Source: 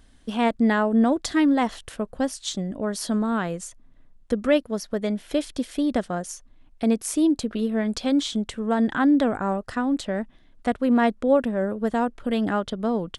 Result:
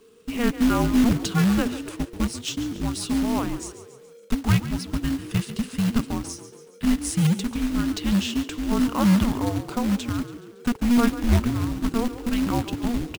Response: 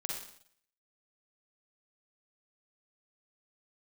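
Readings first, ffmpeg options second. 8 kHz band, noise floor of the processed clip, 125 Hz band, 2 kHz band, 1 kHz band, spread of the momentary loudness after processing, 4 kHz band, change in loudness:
+2.0 dB, -48 dBFS, +11.0 dB, -2.0 dB, -4.0 dB, 10 LU, +2.0 dB, 0.0 dB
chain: -filter_complex "[0:a]afreqshift=-480,acrusher=bits=3:mode=log:mix=0:aa=0.000001,asplit=6[s0][s1][s2][s3][s4][s5];[s1]adelay=140,afreqshift=36,volume=0.211[s6];[s2]adelay=280,afreqshift=72,volume=0.11[s7];[s3]adelay=420,afreqshift=108,volume=0.0569[s8];[s4]adelay=560,afreqshift=144,volume=0.0299[s9];[s5]adelay=700,afreqshift=180,volume=0.0155[s10];[s0][s6][s7][s8][s9][s10]amix=inputs=6:normalize=0"

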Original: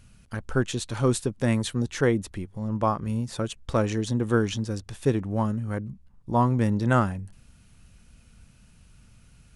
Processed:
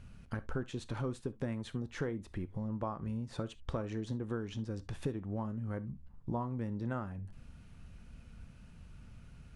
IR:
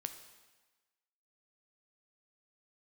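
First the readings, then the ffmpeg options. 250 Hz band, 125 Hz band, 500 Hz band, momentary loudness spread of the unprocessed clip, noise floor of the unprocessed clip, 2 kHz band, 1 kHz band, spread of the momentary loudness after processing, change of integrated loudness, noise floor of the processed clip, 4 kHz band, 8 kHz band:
-12.0 dB, -12.0 dB, -13.5 dB, 11 LU, -56 dBFS, -15.0 dB, -15.5 dB, 17 LU, -13.0 dB, -56 dBFS, -15.0 dB, -20.5 dB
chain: -filter_complex "[0:a]lowpass=f=1800:p=1,acompressor=threshold=0.0158:ratio=6,asplit=2[s0][s1];[1:a]atrim=start_sample=2205,atrim=end_sample=3528[s2];[s1][s2]afir=irnorm=-1:irlink=0,volume=2[s3];[s0][s3]amix=inputs=2:normalize=0,volume=0.473"

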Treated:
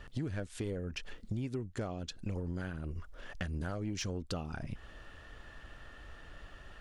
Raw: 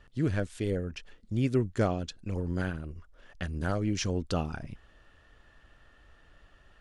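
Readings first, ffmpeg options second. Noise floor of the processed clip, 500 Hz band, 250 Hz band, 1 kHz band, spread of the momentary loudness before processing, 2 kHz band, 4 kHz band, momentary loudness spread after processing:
-54 dBFS, -9.0 dB, -8.0 dB, -8.5 dB, 15 LU, -5.0 dB, -3.5 dB, 15 LU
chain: -af "acompressor=threshold=0.01:ratio=16,asoftclip=type=tanh:threshold=0.0211,volume=2.37"

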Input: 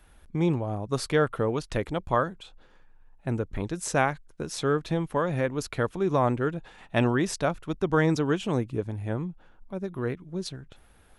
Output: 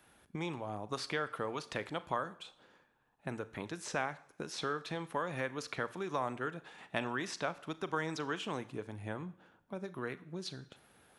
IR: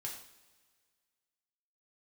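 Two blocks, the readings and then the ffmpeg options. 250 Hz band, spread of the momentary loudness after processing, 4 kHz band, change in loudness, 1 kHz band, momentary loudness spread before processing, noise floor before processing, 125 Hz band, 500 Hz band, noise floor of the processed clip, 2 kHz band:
-13.5 dB, 8 LU, -4.5 dB, -11.5 dB, -8.5 dB, 11 LU, -57 dBFS, -16.0 dB, -12.5 dB, -70 dBFS, -6.5 dB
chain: -filter_complex "[0:a]highpass=150,acrossover=split=800|5400[s0][s1][s2];[s0]acompressor=threshold=0.0126:ratio=4[s3];[s1]acompressor=threshold=0.0251:ratio=4[s4];[s2]acompressor=threshold=0.00178:ratio=4[s5];[s3][s4][s5]amix=inputs=3:normalize=0,asplit=2[s6][s7];[1:a]atrim=start_sample=2205,adelay=38[s8];[s7][s8]afir=irnorm=-1:irlink=0,volume=0.224[s9];[s6][s9]amix=inputs=2:normalize=0,volume=0.75"

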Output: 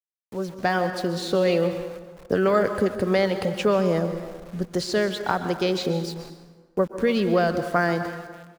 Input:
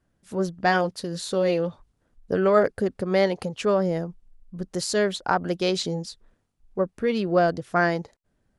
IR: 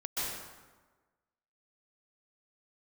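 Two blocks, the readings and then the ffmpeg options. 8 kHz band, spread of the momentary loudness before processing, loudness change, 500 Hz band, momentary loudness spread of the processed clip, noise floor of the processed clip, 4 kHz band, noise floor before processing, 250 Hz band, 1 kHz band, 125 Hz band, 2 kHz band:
-4.0 dB, 12 LU, +0.5 dB, +1.0 dB, 13 LU, -60 dBFS, +0.5 dB, -73 dBFS, +2.0 dB, -0.5 dB, +2.0 dB, 0.0 dB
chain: -filter_complex "[0:a]acrossover=split=190|1500|4900[s0][s1][s2][s3];[s0]acompressor=threshold=0.0141:ratio=4[s4];[s1]acompressor=threshold=0.0631:ratio=4[s5];[s2]acompressor=threshold=0.0224:ratio=4[s6];[s3]acompressor=threshold=0.00282:ratio=4[s7];[s4][s5][s6][s7]amix=inputs=4:normalize=0,asplit=2[s8][s9];[s9]adelay=292,lowpass=f=2900:p=1,volume=0.0891,asplit=2[s10][s11];[s11]adelay=292,lowpass=f=2900:p=1,volume=0.37,asplit=2[s12][s13];[s13]adelay=292,lowpass=f=2900:p=1,volume=0.37[s14];[s8][s10][s12][s14]amix=inputs=4:normalize=0,dynaudnorm=f=120:g=9:m=3.16,aeval=exprs='val(0)*gte(abs(val(0)),0.015)':c=same,asplit=2[s15][s16];[1:a]atrim=start_sample=2205[s17];[s16][s17]afir=irnorm=-1:irlink=0,volume=0.237[s18];[s15][s18]amix=inputs=2:normalize=0,volume=0.531"

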